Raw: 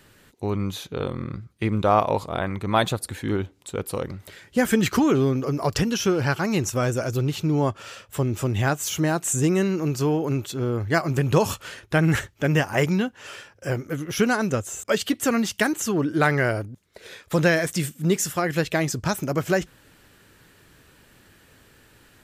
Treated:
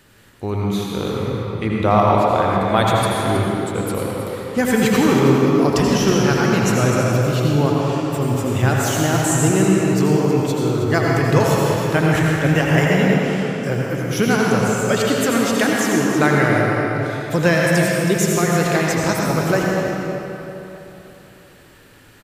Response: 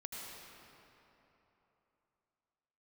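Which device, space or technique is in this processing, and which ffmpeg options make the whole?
cave: -filter_complex "[0:a]aecho=1:1:320:0.299[a];[1:a]atrim=start_sample=2205[b];[a][b]afir=irnorm=-1:irlink=0,volume=7.5dB"

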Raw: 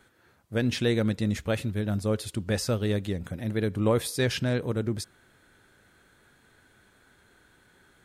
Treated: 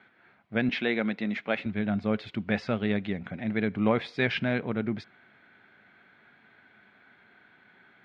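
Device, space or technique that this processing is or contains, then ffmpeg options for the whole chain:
kitchen radio: -filter_complex "[0:a]highpass=160,equalizer=f=210:t=q:w=4:g=5,equalizer=f=330:t=q:w=4:g=-3,equalizer=f=500:t=q:w=4:g=-5,equalizer=f=720:t=q:w=4:g=6,equalizer=f=1.5k:t=q:w=4:g=3,equalizer=f=2.2k:t=q:w=4:g=9,lowpass=f=3.5k:w=0.5412,lowpass=f=3.5k:w=1.3066,asettb=1/sr,asplit=3[a][b][c];[a]atrim=end=0.694[d];[b]atrim=start=0.69:end=1.66,asetpts=PTS-STARTPTS,afade=t=in:d=0.004:c=qsin,afade=t=out:st=0.966:d=0.004:c=qsin,highpass=260[e];[c]atrim=start=1.656[f];[d][e]acrossfade=d=0.004:c1=hsin:c2=qsin[g];[g][f]acrossfade=d=0.004:c1=qsin:c2=hsin"

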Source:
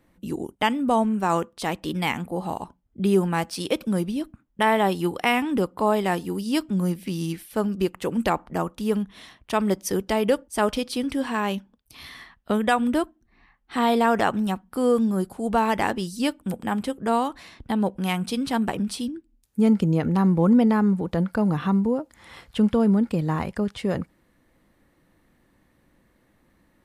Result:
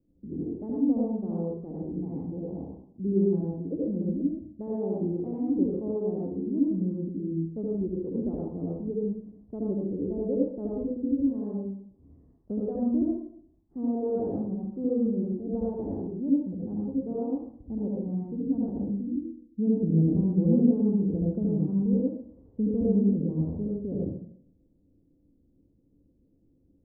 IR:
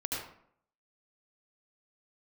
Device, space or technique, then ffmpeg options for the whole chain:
next room: -filter_complex "[0:a]lowpass=f=430:w=0.5412,lowpass=f=430:w=1.3066[a];[1:a]atrim=start_sample=2205[b];[a][b]afir=irnorm=-1:irlink=0,volume=-6dB"

